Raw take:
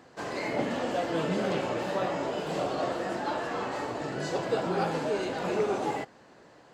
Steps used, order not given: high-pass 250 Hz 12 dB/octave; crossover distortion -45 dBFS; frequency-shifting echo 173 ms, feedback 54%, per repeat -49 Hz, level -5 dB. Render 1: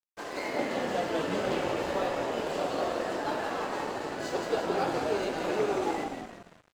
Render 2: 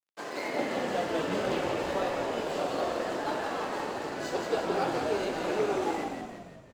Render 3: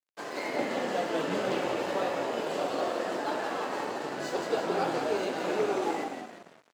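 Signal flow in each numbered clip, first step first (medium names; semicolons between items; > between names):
high-pass > frequency-shifting echo > crossover distortion; crossover distortion > high-pass > frequency-shifting echo; frequency-shifting echo > crossover distortion > high-pass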